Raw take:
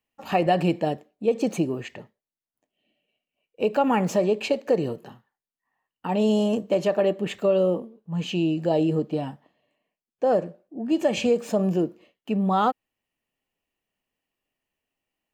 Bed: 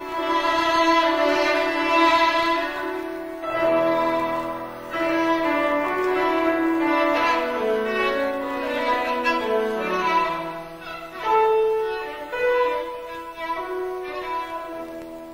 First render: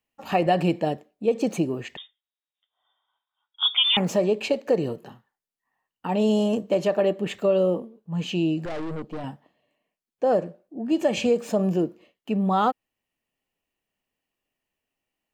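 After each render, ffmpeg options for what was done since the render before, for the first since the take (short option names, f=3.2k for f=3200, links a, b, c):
-filter_complex "[0:a]asettb=1/sr,asplit=3[a][b][c];[a]atrim=end=1.974[d];[b]atrim=start=1.97:end=3.97,asetpts=PTS-STARTPTS,afade=t=in:d=0.004:c=qsin,afade=t=out:st=1.996:d=0.004:c=qsin,lowpass=f=3.2k:t=q:w=0.5098,lowpass=f=3.2k:t=q:w=0.6013,lowpass=f=3.2k:t=q:w=0.9,lowpass=f=3.2k:t=q:w=2.563,afreqshift=-3800[e];[c]atrim=start=3.966[f];[d][e]acrossfade=d=0.004:c1=hsin:c2=qsin[g];[g][f]acrossfade=d=0.004:c1=qsin:c2=hsin,asettb=1/sr,asplit=3[h][i][j];[h]atrim=end=8.654[k];[i]atrim=start=8.65:end=9.24,asetpts=PTS-STARTPTS,afade=t=in:d=0.004:c=qsin,afade=t=out:st=0.586:d=0.004:c=qsin,aeval=exprs='(tanh(31.6*val(0)+0.7)-tanh(0.7))/31.6':c=same[l];[j]atrim=start=9.236[m];[k][l]acrossfade=d=0.004:c1=hsin:c2=qsin[n];[n][m]acrossfade=d=0.004:c1=qsin:c2=hsin"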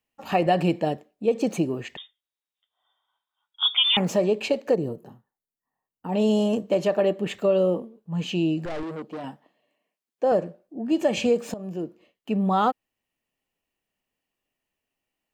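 -filter_complex "[0:a]asplit=3[a][b][c];[a]afade=t=out:st=4.74:d=0.02[d];[b]equalizer=f=2.8k:t=o:w=2.8:g=-13.5,afade=t=in:st=4.74:d=0.02,afade=t=out:st=6.12:d=0.02[e];[c]afade=t=in:st=6.12:d=0.02[f];[d][e][f]amix=inputs=3:normalize=0,asettb=1/sr,asplit=3[g][h][i];[g]atrim=end=8.834[j];[h]atrim=start=8.83:end=10.32,asetpts=PTS-STARTPTS,afade=t=in:d=0.004:c=qsin,afade=t=out:st=1.486:d=0.004:c=qsin,highpass=200[k];[i]atrim=start=10.316[l];[j][k]acrossfade=d=0.004:c1=hsin:c2=qsin[m];[m][l]acrossfade=d=0.004:c1=qsin:c2=hsin,asplit=2[n][o];[n]atrim=end=11.54,asetpts=PTS-STARTPTS,afade=t=out:st=11.536:d=0.004:c=hsin:silence=0.133352[p];[o]atrim=start=11.54,asetpts=PTS-STARTPTS,afade=t=in:d=0.78:silence=0.133352[q];[p][q]concat=n=2:v=0:a=1"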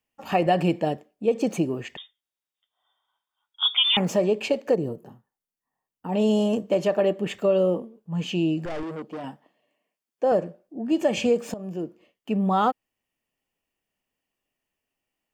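-af "bandreject=f=4k:w=12"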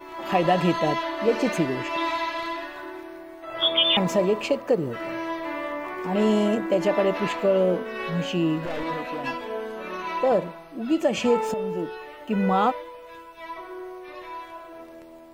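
-filter_complex "[1:a]volume=-9.5dB[a];[0:a][a]amix=inputs=2:normalize=0"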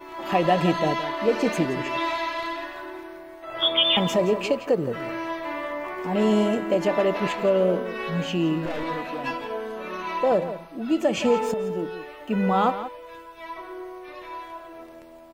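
-filter_complex "[0:a]asplit=2[a][b];[b]adelay=169.1,volume=-12dB,highshelf=f=4k:g=-3.8[c];[a][c]amix=inputs=2:normalize=0"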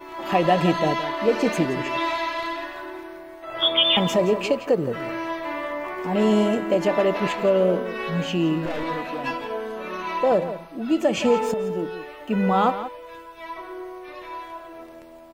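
-af "volume=1.5dB"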